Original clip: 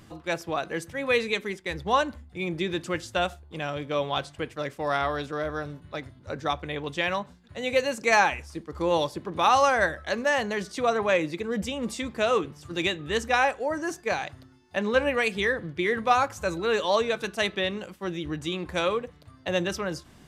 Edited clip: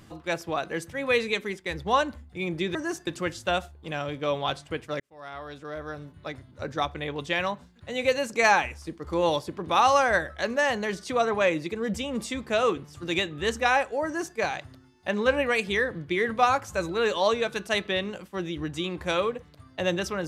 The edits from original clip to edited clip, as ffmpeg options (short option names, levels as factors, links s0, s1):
-filter_complex "[0:a]asplit=4[s0][s1][s2][s3];[s0]atrim=end=2.752[s4];[s1]atrim=start=13.728:end=14.052[s5];[s2]atrim=start=2.748:end=4.68,asetpts=PTS-STARTPTS,afade=t=out:st=1.928:d=0.004:c=hsin[s6];[s3]atrim=start=4.68,asetpts=PTS-STARTPTS,afade=t=in:d=1.51[s7];[s4][s5]acrossfade=d=0.004:c1=hsin:c2=hsin[s8];[s6][s7]concat=n=2:v=0:a=1[s9];[s8][s9]acrossfade=d=0.004:c1=hsin:c2=hsin"